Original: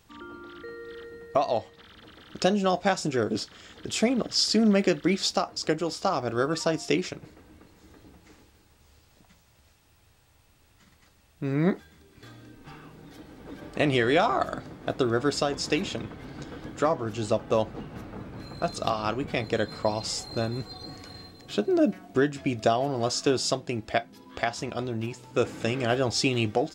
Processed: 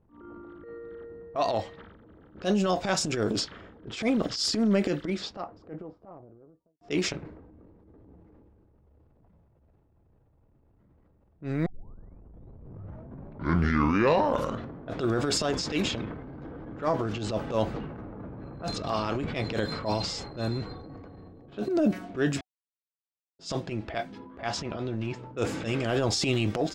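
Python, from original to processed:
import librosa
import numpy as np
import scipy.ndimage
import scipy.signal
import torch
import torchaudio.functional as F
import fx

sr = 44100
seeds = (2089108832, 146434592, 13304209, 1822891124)

y = fx.studio_fade_out(x, sr, start_s=3.89, length_s=2.92)
y = fx.edit(y, sr, fx.tape_start(start_s=11.66, length_s=3.32),
    fx.silence(start_s=22.41, length_s=0.98), tone=tone)
y = fx.notch(y, sr, hz=750.0, q=21.0)
y = fx.env_lowpass(y, sr, base_hz=530.0, full_db=-23.0)
y = fx.transient(y, sr, attack_db=-12, sustain_db=7)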